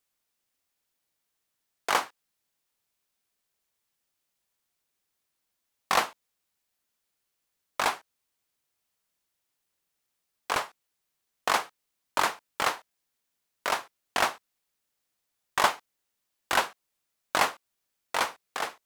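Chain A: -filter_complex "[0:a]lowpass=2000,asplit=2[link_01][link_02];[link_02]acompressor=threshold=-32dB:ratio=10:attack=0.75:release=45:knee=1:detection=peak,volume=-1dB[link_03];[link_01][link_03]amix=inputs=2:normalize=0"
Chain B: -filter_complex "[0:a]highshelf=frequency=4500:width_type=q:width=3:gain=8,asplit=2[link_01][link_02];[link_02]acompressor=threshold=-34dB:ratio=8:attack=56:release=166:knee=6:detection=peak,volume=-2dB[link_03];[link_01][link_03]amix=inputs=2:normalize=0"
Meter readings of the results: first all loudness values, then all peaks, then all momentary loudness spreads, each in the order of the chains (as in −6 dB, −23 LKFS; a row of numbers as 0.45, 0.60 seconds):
−29.5, −24.5 LKFS; −8.0, −1.0 dBFS; 12, 13 LU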